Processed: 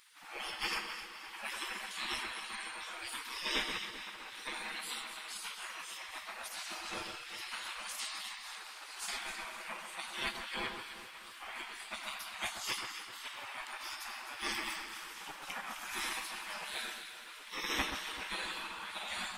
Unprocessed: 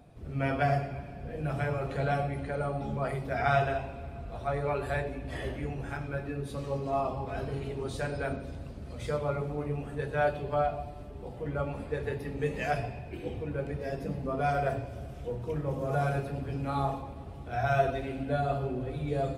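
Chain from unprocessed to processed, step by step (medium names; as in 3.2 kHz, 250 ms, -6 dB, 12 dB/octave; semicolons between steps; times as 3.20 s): spectral gate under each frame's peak -30 dB weak; echo whose repeats swap between lows and highs 129 ms, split 1.7 kHz, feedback 67%, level -6 dB; trim +13.5 dB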